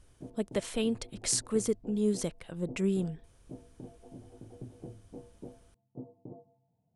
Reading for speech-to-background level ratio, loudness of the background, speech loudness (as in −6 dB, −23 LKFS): 17.5 dB, −50.0 LKFS, −32.5 LKFS